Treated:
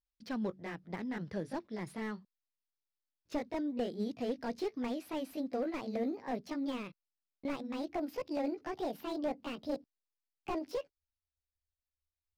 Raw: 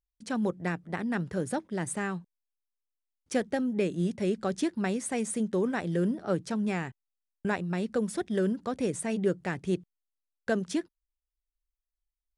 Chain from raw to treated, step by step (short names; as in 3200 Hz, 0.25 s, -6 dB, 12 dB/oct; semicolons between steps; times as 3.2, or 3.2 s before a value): gliding pitch shift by +9.5 st starting unshifted; resonant high shelf 6300 Hz -8.5 dB, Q 3; slew limiter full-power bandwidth 35 Hz; gain -6 dB